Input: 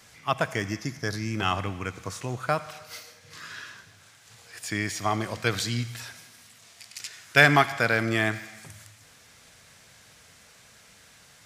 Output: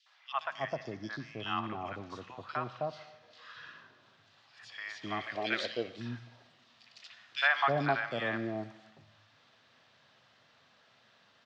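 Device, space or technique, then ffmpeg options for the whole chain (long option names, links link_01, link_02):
kitchen radio: -filter_complex "[0:a]asettb=1/sr,asplit=3[link_01][link_02][link_03];[link_01]atrim=end=5.034[link_04];[link_02]atrim=start=5.03:end=5.66,asetpts=PTS-STARTPTS,afade=type=in:duration=0.004:curve=qsin,afade=type=out:start_time=0.626:duration=0.004:curve=qsin,equalizer=frequency=125:width_type=o:width=1:gain=-10,equalizer=frequency=500:width_type=o:width=1:gain=9,equalizer=frequency=1000:width_type=o:width=1:gain=-11,equalizer=frequency=2000:width_type=o:width=1:gain=12,equalizer=frequency=8000:width_type=o:width=1:gain=4[link_05];[link_03]atrim=start=5.656[link_06];[link_04][link_05]acrossfade=duration=0.004:curve1=hsin:curve2=qsin[link_07];[link_07][link_06]acrossfade=duration=0.004:curve1=qsin:curve2=hsin,highpass=91,highpass=180,equalizer=frequency=180:width_type=q:width=4:gain=-10,equalizer=frequency=300:width_type=q:width=4:gain=-6,equalizer=frequency=450:width_type=q:width=4:gain=-8,equalizer=frequency=1500:width_type=q:width=4:gain=-5,equalizer=frequency=2200:width_type=q:width=4:gain=-9,lowpass=frequency=3700:width=0.5412,lowpass=frequency=3700:width=1.3066,acrossover=split=790|2900[link_08][link_09][link_10];[link_09]adelay=60[link_11];[link_08]adelay=320[link_12];[link_12][link_11][link_10]amix=inputs=3:normalize=0,volume=-2.5dB"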